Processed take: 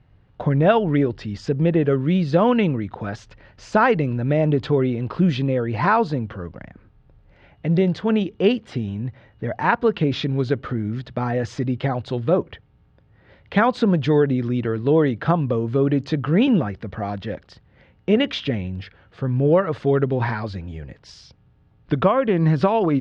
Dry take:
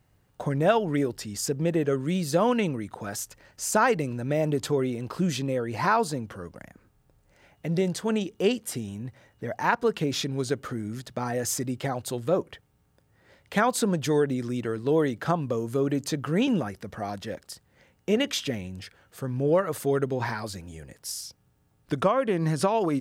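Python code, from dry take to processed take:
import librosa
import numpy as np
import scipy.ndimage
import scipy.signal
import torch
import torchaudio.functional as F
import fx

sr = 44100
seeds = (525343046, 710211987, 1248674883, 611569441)

y = scipy.signal.sosfilt(scipy.signal.butter(4, 3800.0, 'lowpass', fs=sr, output='sos'), x)
y = fx.low_shelf(y, sr, hz=160.0, db=8.5)
y = F.gain(torch.from_numpy(y), 4.5).numpy()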